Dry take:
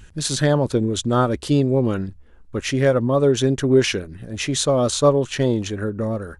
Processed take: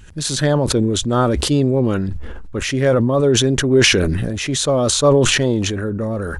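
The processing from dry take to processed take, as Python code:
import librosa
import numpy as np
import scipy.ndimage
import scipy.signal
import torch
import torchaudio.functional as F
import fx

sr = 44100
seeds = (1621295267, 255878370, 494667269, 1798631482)

y = fx.high_shelf(x, sr, hz=8900.0, db=-8.0, at=(2.08, 2.58))
y = fx.sustainer(y, sr, db_per_s=23.0)
y = y * 10.0 ** (1.0 / 20.0)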